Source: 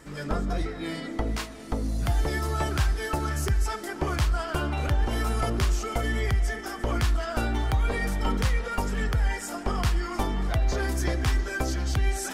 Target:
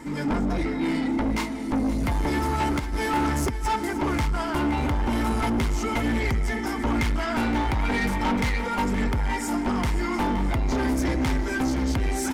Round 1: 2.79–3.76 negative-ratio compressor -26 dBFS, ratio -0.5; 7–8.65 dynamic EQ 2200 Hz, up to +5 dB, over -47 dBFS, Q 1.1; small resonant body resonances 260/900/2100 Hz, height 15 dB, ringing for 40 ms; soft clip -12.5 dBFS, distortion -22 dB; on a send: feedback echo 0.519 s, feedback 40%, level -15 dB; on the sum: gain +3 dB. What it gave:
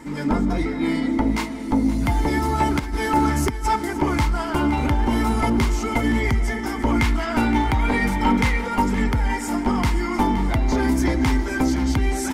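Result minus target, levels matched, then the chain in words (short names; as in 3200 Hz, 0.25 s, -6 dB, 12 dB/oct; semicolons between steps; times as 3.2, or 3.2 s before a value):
soft clip: distortion -12 dB
2.79–3.76 negative-ratio compressor -26 dBFS, ratio -0.5; 7–8.65 dynamic EQ 2200 Hz, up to +5 dB, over -47 dBFS, Q 1.1; small resonant body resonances 260/900/2100 Hz, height 15 dB, ringing for 40 ms; soft clip -23.5 dBFS, distortion -9 dB; on a send: feedback echo 0.519 s, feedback 40%, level -15 dB; on the sum: gain +3 dB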